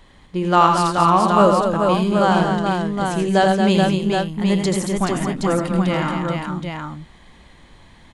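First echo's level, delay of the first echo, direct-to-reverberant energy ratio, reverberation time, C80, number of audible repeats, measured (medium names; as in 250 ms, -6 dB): -6.0 dB, 82 ms, no reverb, no reverb, no reverb, 4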